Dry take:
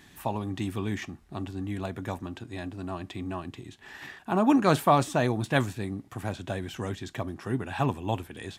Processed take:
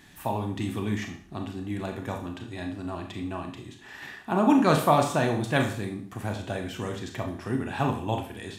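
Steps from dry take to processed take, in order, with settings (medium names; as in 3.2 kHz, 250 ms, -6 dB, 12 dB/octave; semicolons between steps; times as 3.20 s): Schroeder reverb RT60 0.5 s, combs from 26 ms, DRR 3.5 dB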